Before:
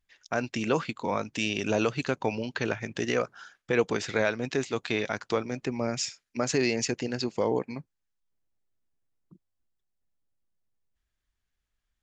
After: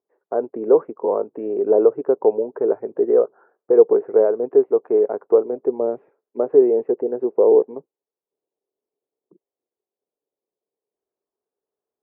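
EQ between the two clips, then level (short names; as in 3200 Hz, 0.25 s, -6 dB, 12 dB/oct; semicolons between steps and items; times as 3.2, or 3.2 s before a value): resonant high-pass 420 Hz, resonance Q 4.9; LPF 1000 Hz 24 dB/oct; air absorption 490 m; +4.5 dB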